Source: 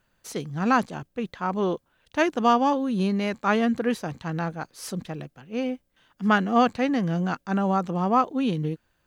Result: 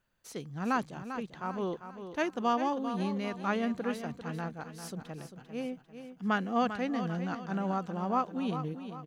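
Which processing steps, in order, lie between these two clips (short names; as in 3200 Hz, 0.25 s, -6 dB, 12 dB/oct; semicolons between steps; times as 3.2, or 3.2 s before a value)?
feedback echo 0.396 s, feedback 42%, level -10 dB; gain -9 dB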